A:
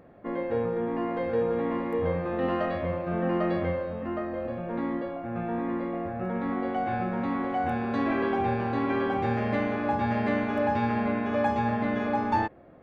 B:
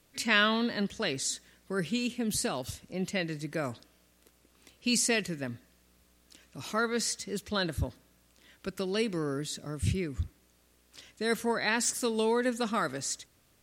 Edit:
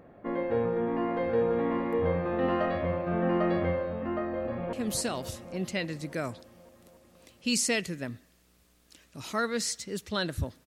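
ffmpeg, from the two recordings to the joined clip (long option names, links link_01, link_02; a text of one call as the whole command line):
ffmpeg -i cue0.wav -i cue1.wav -filter_complex "[0:a]apad=whole_dur=10.66,atrim=end=10.66,atrim=end=4.732[link_01];[1:a]atrim=start=2.128:end=8.06[link_02];[link_01][link_02]acrossfade=duration=0.004:curve1=hsin:curve2=hsin,asplit=2[link_03][link_04];[link_04]afade=type=in:start_time=4.23:duration=0.01,afade=type=out:start_time=4.73:duration=0.01,aecho=0:1:280|560|840|1120|1400|1680|1960|2240|2520|2800|3080|3360:0.421697|0.316272|0.237204|0.177903|0.133427|0.100071|0.0750529|0.0562897|0.0422173|0.0316629|0.0237472|0.0178104[link_05];[link_03][link_05]amix=inputs=2:normalize=0" out.wav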